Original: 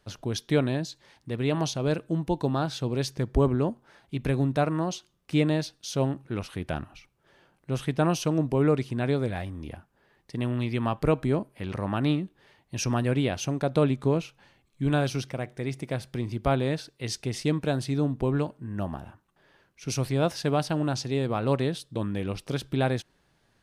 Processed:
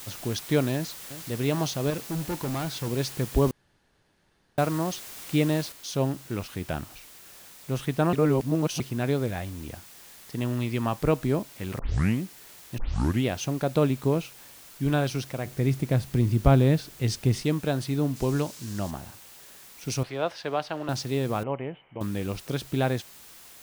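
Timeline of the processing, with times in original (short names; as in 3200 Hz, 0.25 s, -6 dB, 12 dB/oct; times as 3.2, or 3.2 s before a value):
0.73–1.29 echo throw 0.37 s, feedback 80%, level -14 dB
1.9–2.88 hard clip -26.5 dBFS
3.51–4.58 room tone
5.72 noise floor step -42 dB -49 dB
8.13–8.8 reverse
11.79 tape start 0.43 s
12.78 tape start 0.47 s
15.45–17.44 low shelf 280 Hz +11.5 dB
18.16–18.91 bell 6000 Hz +8.5 dB 1.5 oct
20.03–20.89 three-band isolator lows -14 dB, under 400 Hz, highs -16 dB, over 4400 Hz
21.43–22.01 rippled Chebyshev low-pass 3100 Hz, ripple 9 dB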